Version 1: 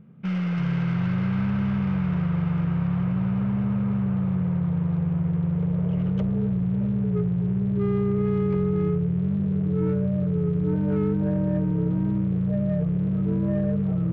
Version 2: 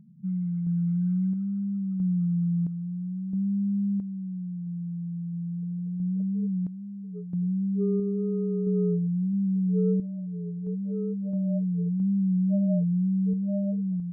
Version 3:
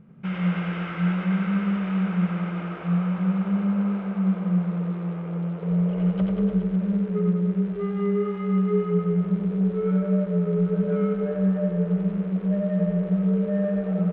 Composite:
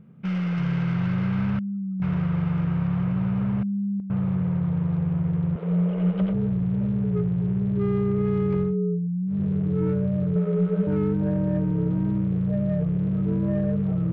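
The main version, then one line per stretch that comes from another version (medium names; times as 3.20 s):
1
1.59–2.02 s: from 2
3.63–4.10 s: from 2
5.56–6.33 s: from 3
8.69–9.34 s: from 2, crossfade 0.16 s
10.36–10.87 s: from 3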